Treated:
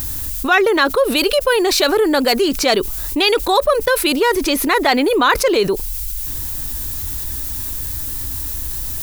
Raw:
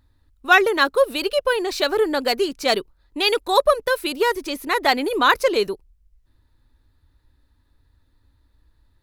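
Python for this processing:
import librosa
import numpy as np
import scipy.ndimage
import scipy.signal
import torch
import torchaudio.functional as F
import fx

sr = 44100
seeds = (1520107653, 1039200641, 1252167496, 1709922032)

y = fx.high_shelf(x, sr, hz=8400.0, db=fx.steps((0.0, -3.0), (1.16, 6.5), (2.41, -2.5)))
y = fx.dmg_noise_colour(y, sr, seeds[0], colour='violet', level_db=-56.0)
y = fx.env_flatten(y, sr, amount_pct=70)
y = y * librosa.db_to_amplitude(-1.0)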